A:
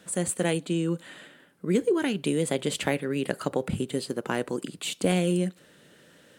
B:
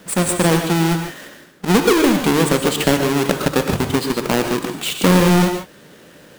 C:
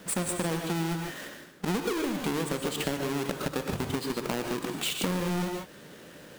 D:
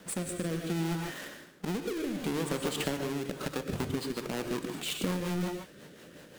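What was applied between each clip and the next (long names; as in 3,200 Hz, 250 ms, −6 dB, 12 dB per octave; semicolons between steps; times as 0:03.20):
each half-wave held at its own peak; mains-hum notches 50/100/150 Hz; reverb whose tail is shaped and stops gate 170 ms rising, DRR 5 dB; level +5.5 dB
downward compressor 6 to 1, threshold −24 dBFS, peak gain reduction 14 dB; level −4 dB
rotating-speaker cabinet horn 0.65 Hz, later 5.5 Hz, at 0:03.08; level −1 dB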